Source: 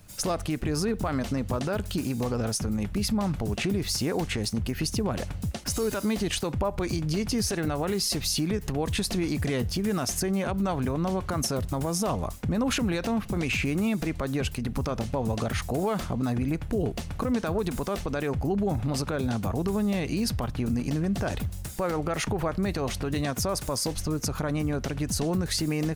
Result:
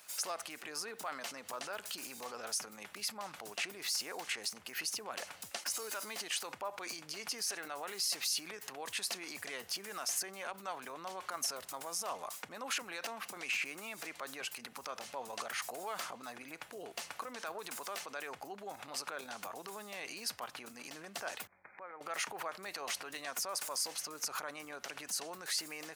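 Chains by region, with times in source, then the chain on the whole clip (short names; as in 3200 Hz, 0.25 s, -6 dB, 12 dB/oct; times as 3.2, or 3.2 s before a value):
21.47–22.01 brick-wall FIR low-pass 2500 Hz + compressor, threshold -41 dBFS
whole clip: limiter -27 dBFS; HPF 890 Hz 12 dB/oct; dynamic EQ 3600 Hz, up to -4 dB, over -59 dBFS, Q 5.6; gain +2.5 dB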